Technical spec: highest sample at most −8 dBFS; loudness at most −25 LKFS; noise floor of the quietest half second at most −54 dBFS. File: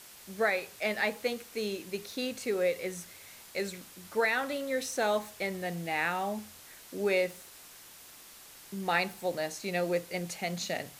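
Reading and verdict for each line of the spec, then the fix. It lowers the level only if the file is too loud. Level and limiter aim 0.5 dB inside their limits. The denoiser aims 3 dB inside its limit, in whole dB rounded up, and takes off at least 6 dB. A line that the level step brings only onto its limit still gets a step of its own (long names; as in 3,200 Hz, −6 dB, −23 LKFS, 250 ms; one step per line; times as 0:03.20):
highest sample −14.5 dBFS: in spec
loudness −32.5 LKFS: in spec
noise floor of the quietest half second −52 dBFS: out of spec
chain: broadband denoise 6 dB, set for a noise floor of −52 dBFS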